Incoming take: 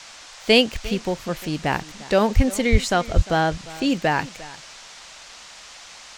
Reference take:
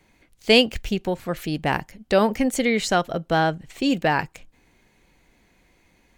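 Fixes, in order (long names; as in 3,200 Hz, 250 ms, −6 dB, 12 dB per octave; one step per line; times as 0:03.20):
0:02.35–0:02.47: high-pass filter 140 Hz 24 dB per octave
0:02.71–0:02.83: high-pass filter 140 Hz 24 dB per octave
0:03.15–0:03.27: high-pass filter 140 Hz 24 dB per octave
noise reduction from a noise print 18 dB
echo removal 351 ms −19 dB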